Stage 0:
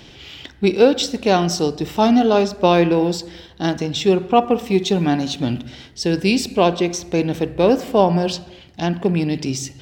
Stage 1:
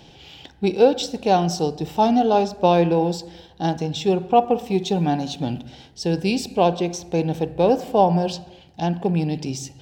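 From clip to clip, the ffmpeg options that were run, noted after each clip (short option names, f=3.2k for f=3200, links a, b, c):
-af "equalizer=f=160:t=o:w=0.33:g=6,equalizer=f=500:t=o:w=0.33:g=4,equalizer=f=800:t=o:w=0.33:g=10,equalizer=f=1.25k:t=o:w=0.33:g=-5,equalizer=f=2k:t=o:w=0.33:g=-6,volume=-5.5dB"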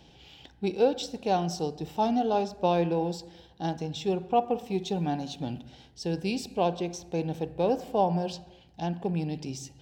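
-af "aeval=exprs='val(0)+0.002*(sin(2*PI*60*n/s)+sin(2*PI*2*60*n/s)/2+sin(2*PI*3*60*n/s)/3+sin(2*PI*4*60*n/s)/4+sin(2*PI*5*60*n/s)/5)':c=same,volume=-8.5dB"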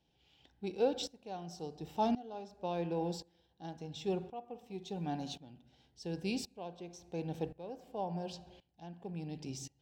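-af "aeval=exprs='val(0)*pow(10,-19*if(lt(mod(-0.93*n/s,1),2*abs(-0.93)/1000),1-mod(-0.93*n/s,1)/(2*abs(-0.93)/1000),(mod(-0.93*n/s,1)-2*abs(-0.93)/1000)/(1-2*abs(-0.93)/1000))/20)':c=same,volume=-3.5dB"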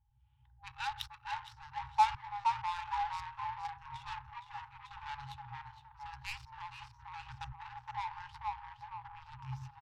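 -filter_complex "[0:a]asplit=6[a][b][c][d][e][f];[b]adelay=466,afreqshift=56,volume=-4.5dB[g];[c]adelay=932,afreqshift=112,volume=-12dB[h];[d]adelay=1398,afreqshift=168,volume=-19.6dB[i];[e]adelay=1864,afreqshift=224,volume=-27.1dB[j];[f]adelay=2330,afreqshift=280,volume=-34.6dB[k];[a][g][h][i][j][k]amix=inputs=6:normalize=0,adynamicsmooth=sensitivity=7.5:basefreq=570,afftfilt=real='re*(1-between(b*sr/4096,130,800))':imag='im*(1-between(b*sr/4096,130,800))':win_size=4096:overlap=0.75,volume=9dB"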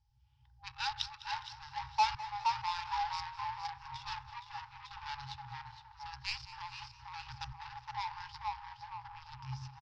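-af "asoftclip=type=tanh:threshold=-21.5dB,lowpass=f=5.1k:t=q:w=5.1,aecho=1:1:205|410|615|820:0.15|0.0703|0.0331|0.0155"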